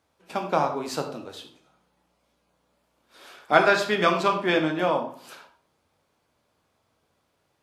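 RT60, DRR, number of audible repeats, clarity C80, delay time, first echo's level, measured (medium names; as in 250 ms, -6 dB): 0.40 s, 3.5 dB, no echo, 12.0 dB, no echo, no echo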